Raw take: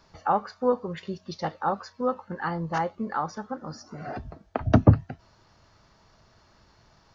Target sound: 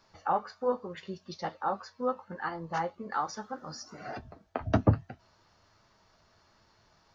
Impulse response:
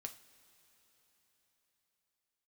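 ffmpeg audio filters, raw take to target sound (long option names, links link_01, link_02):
-filter_complex "[0:a]asettb=1/sr,asplit=3[link_01][link_02][link_03];[link_01]atrim=end=3.124[link_04];[link_02]atrim=start=3.12:end=4.18,asetpts=PTS-STARTPTS,afade=type=in:duration=0.004:curve=qsin,afade=type=out:start_time=1.056:duration=0.004:curve=qsin,highshelf=frequency=2300:gain=8.5[link_05];[link_03]atrim=start=4.176[link_06];[link_04][link_05]acrossfade=duration=0.004:curve1=hsin:curve2=qsin[link_07];[link_07][link_06]acrossfade=duration=0.004:curve1=qsin:curve2=hsin,flanger=delay=8.8:depth=3:regen=-43:speed=1.2:shape=sinusoidal,lowshelf=frequency=300:gain=-5.5"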